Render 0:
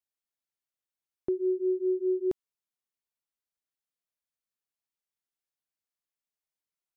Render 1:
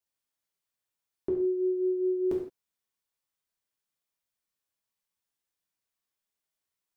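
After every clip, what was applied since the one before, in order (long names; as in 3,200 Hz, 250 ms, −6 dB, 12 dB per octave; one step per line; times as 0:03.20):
reverb whose tail is shaped and stops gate 190 ms falling, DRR −2.5 dB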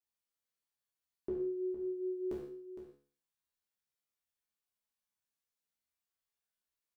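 tuned comb filter 71 Hz, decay 0.45 s, harmonics all, mix 90%
single-tap delay 461 ms −11.5 dB
level +3 dB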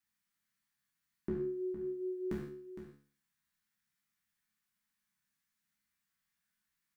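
drawn EQ curve 110 Hz 0 dB, 180 Hz +11 dB, 470 Hz −13 dB, 1,800 Hz +7 dB, 2,800 Hz −1 dB
level +6 dB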